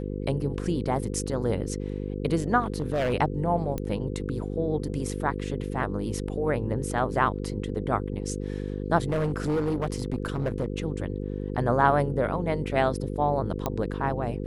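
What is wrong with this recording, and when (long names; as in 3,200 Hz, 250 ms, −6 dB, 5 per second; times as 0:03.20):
mains buzz 50 Hz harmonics 10 −32 dBFS
0:02.60–0:03.14: clipping −21.5 dBFS
0:03.78: click −17 dBFS
0:09.09–0:10.66: clipping −22 dBFS
0:13.66: click −13 dBFS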